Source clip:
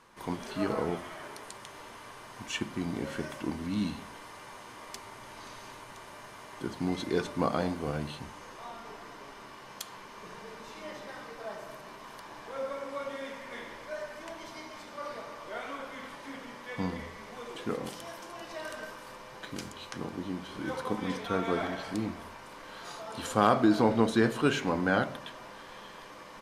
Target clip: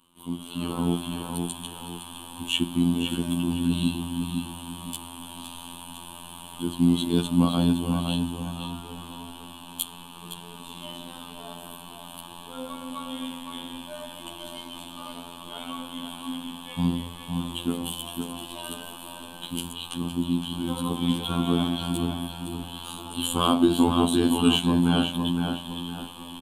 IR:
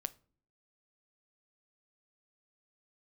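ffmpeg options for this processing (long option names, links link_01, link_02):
-filter_complex "[0:a]afftfilt=real='hypot(re,im)*cos(PI*b)':imag='0':win_size=2048:overlap=0.75,firequalizer=gain_entry='entry(130,0);entry(240,7);entry(470,-11);entry(1100,-3);entry(1900,-21);entry(3000,11);entry(5300,-16);entry(8600,10)':delay=0.05:min_phase=1,asplit=2[link_01][link_02];[link_02]adelay=512,lowpass=frequency=4000:poles=1,volume=-5dB,asplit=2[link_03][link_04];[link_04]adelay=512,lowpass=frequency=4000:poles=1,volume=0.39,asplit=2[link_05][link_06];[link_06]adelay=512,lowpass=frequency=4000:poles=1,volume=0.39,asplit=2[link_07][link_08];[link_08]adelay=512,lowpass=frequency=4000:poles=1,volume=0.39,asplit=2[link_09][link_10];[link_10]adelay=512,lowpass=frequency=4000:poles=1,volume=0.39[link_11];[link_01][link_03][link_05][link_07][link_09][link_11]amix=inputs=6:normalize=0,dynaudnorm=framelen=240:gausssize=5:maxgain=11dB,volume=-1.5dB"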